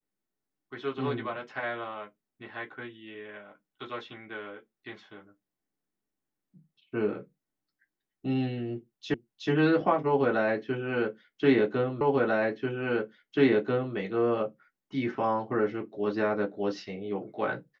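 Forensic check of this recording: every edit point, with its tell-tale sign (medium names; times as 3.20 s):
9.14 s: repeat of the last 0.37 s
12.01 s: repeat of the last 1.94 s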